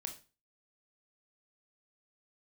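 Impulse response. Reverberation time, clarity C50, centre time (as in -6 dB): 0.30 s, 10.5 dB, 13 ms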